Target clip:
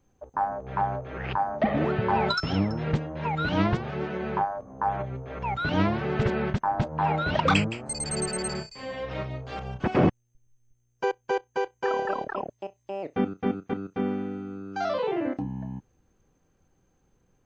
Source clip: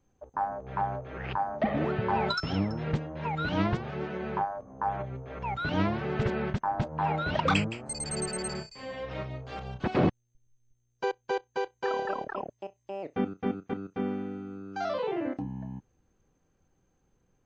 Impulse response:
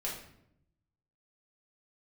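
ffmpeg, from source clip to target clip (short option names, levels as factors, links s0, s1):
-filter_complex "[0:a]asettb=1/sr,asplit=3[s0][s1][s2];[s0]atrim=end=9.594[s3];[s1]atrim=start=9.59:end=12.12,asetpts=PTS-STARTPTS,afade=t=in:d=0.004:c=qsin,afade=t=out:st=2.526:d=0.004:c=qsin,equalizer=f=4000:t=o:w=0.37:g=-9[s4];[s2]atrim=start=12.116[s5];[s3][s4]acrossfade=d=0.004:c1=hsin:c2=qsin[s6];[s6][s5]acrossfade=d=0.004:c1=qsin:c2=hsin,volume=1.5"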